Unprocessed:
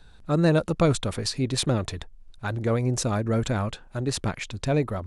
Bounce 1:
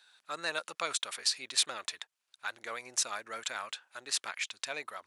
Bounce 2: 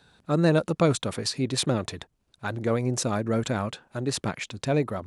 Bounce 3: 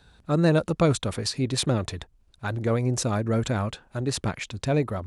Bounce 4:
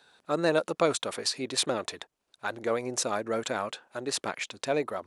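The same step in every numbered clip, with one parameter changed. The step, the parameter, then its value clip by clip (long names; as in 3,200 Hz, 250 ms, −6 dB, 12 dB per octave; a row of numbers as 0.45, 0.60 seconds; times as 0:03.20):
high-pass filter, corner frequency: 1,500, 130, 48, 420 Hertz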